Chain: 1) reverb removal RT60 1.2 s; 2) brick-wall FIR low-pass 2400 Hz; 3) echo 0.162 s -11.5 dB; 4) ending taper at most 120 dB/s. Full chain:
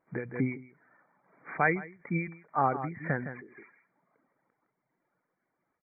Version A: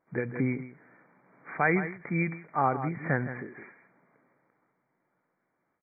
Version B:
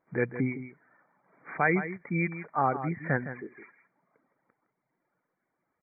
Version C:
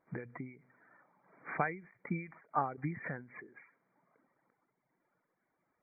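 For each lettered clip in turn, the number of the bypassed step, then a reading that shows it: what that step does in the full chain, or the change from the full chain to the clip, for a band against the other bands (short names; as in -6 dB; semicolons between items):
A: 1, 1 kHz band -2.0 dB; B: 4, crest factor change -2.0 dB; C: 3, momentary loudness spread change +1 LU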